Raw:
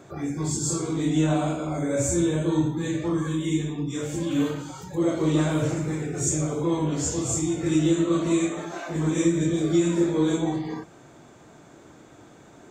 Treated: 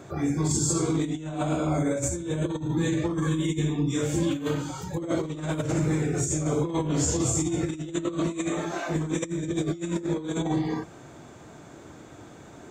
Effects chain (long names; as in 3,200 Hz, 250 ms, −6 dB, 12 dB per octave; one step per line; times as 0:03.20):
parametric band 77 Hz +4.5 dB 1.2 octaves
compressor whose output falls as the input rises −26 dBFS, ratio −0.5